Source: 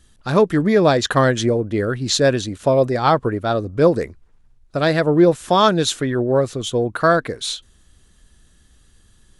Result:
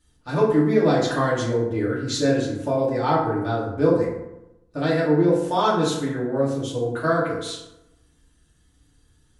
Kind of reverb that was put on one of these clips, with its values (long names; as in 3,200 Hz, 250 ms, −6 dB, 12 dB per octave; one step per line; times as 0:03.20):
feedback delay network reverb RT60 0.92 s, low-frequency decay 1.1×, high-frequency decay 0.5×, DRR −7.5 dB
level −14 dB